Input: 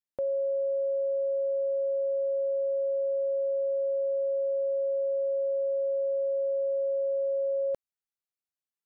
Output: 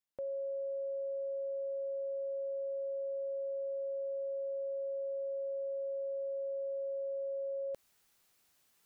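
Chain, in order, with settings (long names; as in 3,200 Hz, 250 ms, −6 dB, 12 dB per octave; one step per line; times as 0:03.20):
brickwall limiter −34.5 dBFS, peak gain reduction 9.5 dB
reversed playback
upward compression, threshold −53 dBFS
reversed playback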